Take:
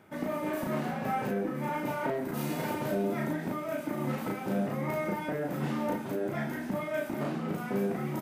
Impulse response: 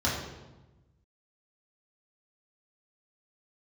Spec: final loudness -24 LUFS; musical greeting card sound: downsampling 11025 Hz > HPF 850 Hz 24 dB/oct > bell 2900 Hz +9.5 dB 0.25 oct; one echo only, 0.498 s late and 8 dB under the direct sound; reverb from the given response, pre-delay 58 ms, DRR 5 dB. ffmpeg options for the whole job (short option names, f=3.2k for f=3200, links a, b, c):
-filter_complex "[0:a]aecho=1:1:498:0.398,asplit=2[a][b];[1:a]atrim=start_sample=2205,adelay=58[c];[b][c]afir=irnorm=-1:irlink=0,volume=-16dB[d];[a][d]amix=inputs=2:normalize=0,aresample=11025,aresample=44100,highpass=f=850:w=0.5412,highpass=f=850:w=1.3066,equalizer=f=2.9k:t=o:w=0.25:g=9.5,volume=14dB"